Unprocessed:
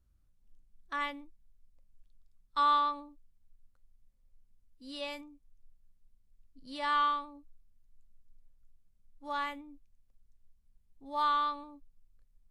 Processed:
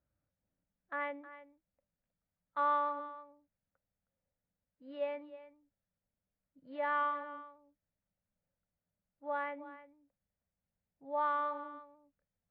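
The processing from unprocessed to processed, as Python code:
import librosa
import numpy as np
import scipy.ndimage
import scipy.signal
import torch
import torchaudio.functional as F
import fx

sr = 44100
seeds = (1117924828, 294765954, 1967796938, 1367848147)

y = fx.cabinet(x, sr, low_hz=160.0, low_slope=12, high_hz=2000.0, hz=(230.0, 380.0, 580.0, 1100.0), db=(-7, -8, 7, -7))
y = y + 10.0 ** (-15.0 / 20.0) * np.pad(y, (int(315 * sr / 1000.0), 0))[:len(y)]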